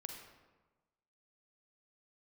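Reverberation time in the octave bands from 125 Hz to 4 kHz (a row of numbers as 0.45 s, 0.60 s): 1.3 s, 1.3 s, 1.2 s, 1.2 s, 1.0 s, 0.75 s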